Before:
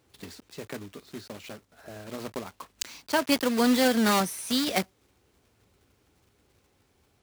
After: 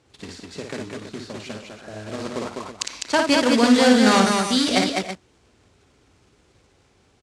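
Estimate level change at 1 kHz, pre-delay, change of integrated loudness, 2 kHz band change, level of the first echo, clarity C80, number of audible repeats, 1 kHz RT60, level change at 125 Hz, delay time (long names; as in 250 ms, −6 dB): +7.5 dB, no reverb audible, +7.5 dB, +8.0 dB, −4.5 dB, no reverb audible, 4, no reverb audible, +7.5 dB, 56 ms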